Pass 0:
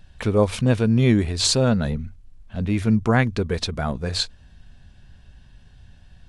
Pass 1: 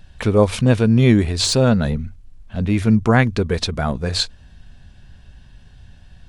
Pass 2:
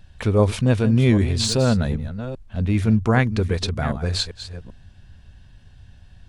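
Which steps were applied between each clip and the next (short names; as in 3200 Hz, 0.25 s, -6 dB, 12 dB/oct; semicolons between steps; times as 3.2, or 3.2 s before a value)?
de-esser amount 40%; gain +4 dB
reverse delay 0.392 s, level -12 dB; bell 92 Hz +5.5 dB 0.48 oct; gain -4 dB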